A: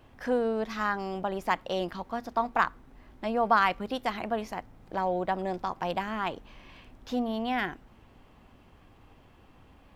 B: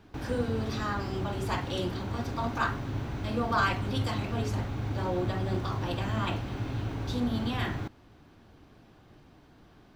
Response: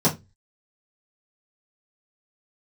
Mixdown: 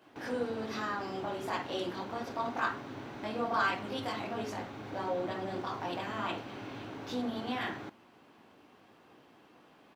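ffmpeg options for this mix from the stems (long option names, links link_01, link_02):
-filter_complex "[0:a]acompressor=threshold=-34dB:ratio=6,flanger=delay=16.5:depth=3.6:speed=0.98,volume=1dB[link_01];[1:a]highshelf=frequency=7000:gain=-7.5,volume=-1,adelay=17,volume=-3dB[link_02];[link_01][link_02]amix=inputs=2:normalize=0,highpass=260"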